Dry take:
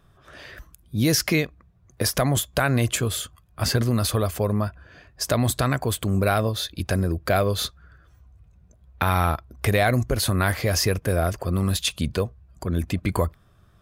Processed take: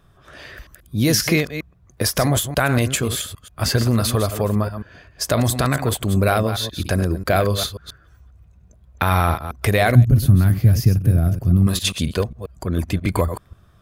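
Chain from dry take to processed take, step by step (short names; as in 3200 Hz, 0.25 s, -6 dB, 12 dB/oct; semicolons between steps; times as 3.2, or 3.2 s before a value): reverse delay 0.134 s, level -9.5 dB; 9.95–11.67 graphic EQ 125/250/500/1000/2000/4000/8000 Hz +11/+3/-11/-11/-10/-8/-11 dB; gain +3 dB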